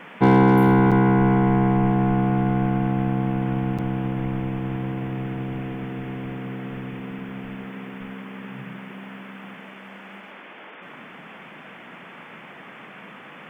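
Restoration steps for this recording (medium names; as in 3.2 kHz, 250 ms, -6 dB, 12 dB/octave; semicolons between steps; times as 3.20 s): clip repair -7.5 dBFS; interpolate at 0.91/3.78 s, 6.6 ms; noise print and reduce 23 dB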